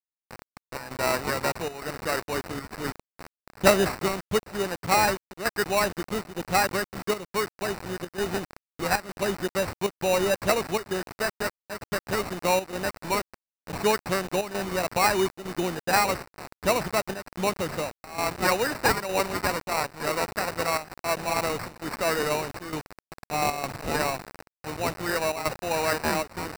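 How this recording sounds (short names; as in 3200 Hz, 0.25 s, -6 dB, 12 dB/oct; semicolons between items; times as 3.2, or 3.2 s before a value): a quantiser's noise floor 6-bit, dither none; chopped level 1.1 Hz, depth 65%, duty 85%; aliases and images of a low sample rate 3300 Hz, jitter 0%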